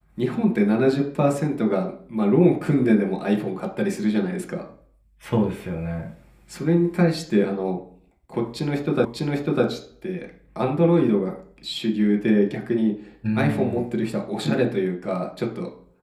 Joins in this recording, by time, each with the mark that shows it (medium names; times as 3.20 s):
9.05 s: repeat of the last 0.6 s